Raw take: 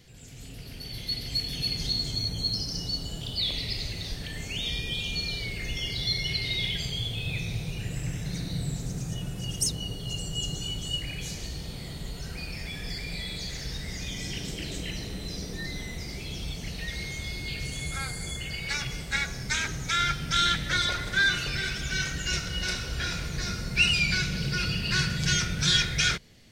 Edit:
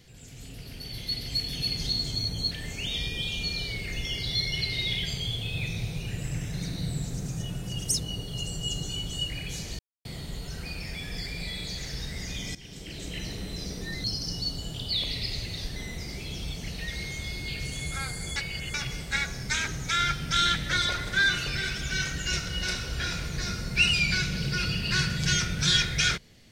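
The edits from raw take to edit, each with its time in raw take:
0:02.51–0:04.23: move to 0:15.76
0:11.51–0:11.77: silence
0:14.27–0:15.00: fade in, from −16 dB
0:18.36–0:18.74: reverse

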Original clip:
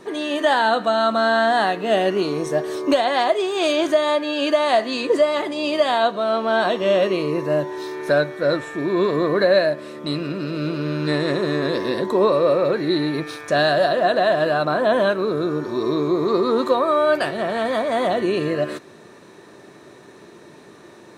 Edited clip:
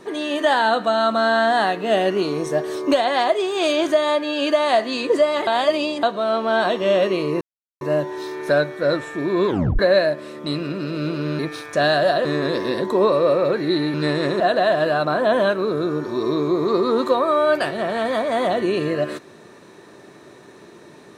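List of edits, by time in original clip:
0:05.47–0:06.03: reverse
0:07.41: splice in silence 0.40 s
0:09.07: tape stop 0.32 s
0:10.99–0:11.45: swap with 0:13.14–0:14.00

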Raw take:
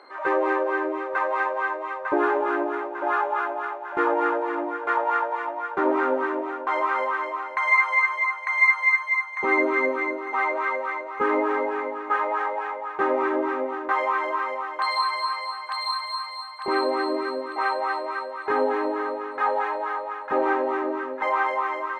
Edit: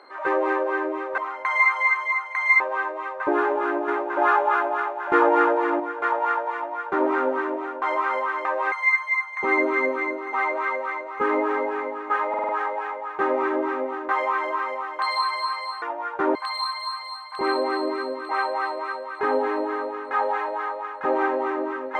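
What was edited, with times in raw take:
0:01.18–0:01.45: swap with 0:07.30–0:08.72
0:02.73–0:04.65: clip gain +4.5 dB
0:05.40–0:05.93: duplicate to 0:15.62
0:12.29: stutter 0.05 s, 5 plays

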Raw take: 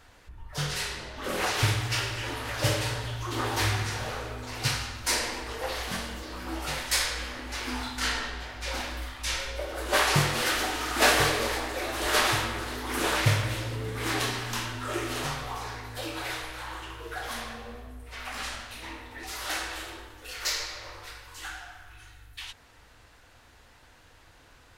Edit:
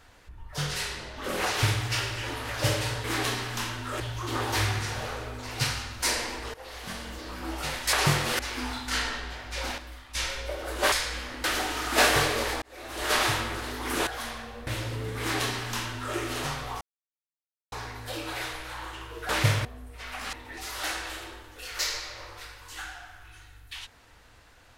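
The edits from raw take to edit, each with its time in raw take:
0:05.58–0:06.26: fade in, from −16.5 dB
0:06.97–0:07.49: swap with 0:10.02–0:10.48
0:08.88–0:09.25: clip gain −7.5 dB
0:11.66–0:12.26: fade in
0:13.11–0:13.47: swap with 0:17.18–0:17.78
0:14.00–0:14.96: duplicate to 0:03.04
0:15.61: splice in silence 0.91 s
0:18.46–0:18.99: remove

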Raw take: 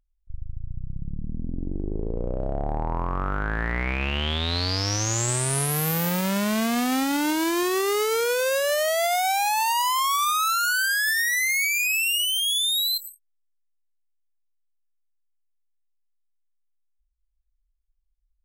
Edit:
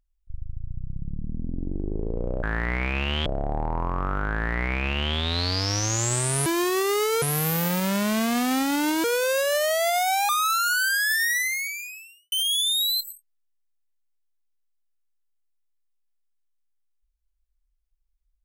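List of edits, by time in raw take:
0:03.49–0:04.32: duplicate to 0:02.43
0:07.45–0:08.21: move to 0:05.63
0:09.46–0:10.26: remove
0:11.30–0:12.29: fade out quadratic

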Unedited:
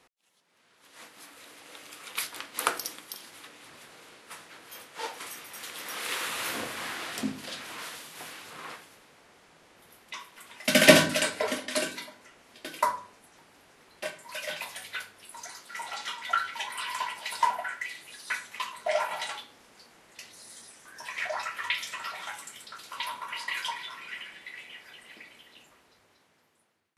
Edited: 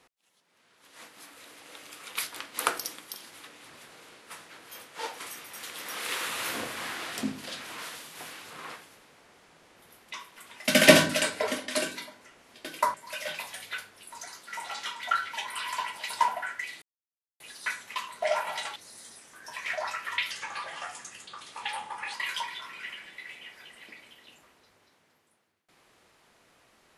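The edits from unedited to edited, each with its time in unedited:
0:12.94–0:14.16: remove
0:18.04: splice in silence 0.58 s
0:19.40–0:20.28: remove
0:21.83–0:23.42: play speed 87%

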